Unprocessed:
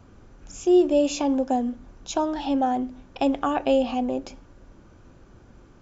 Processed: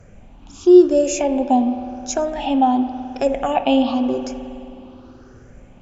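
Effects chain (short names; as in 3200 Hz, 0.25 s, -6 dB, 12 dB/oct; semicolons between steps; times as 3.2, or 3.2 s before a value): moving spectral ripple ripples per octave 0.53, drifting +0.91 Hz, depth 14 dB; spring tank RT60 2.9 s, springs 52 ms, chirp 45 ms, DRR 9.5 dB; gain +2.5 dB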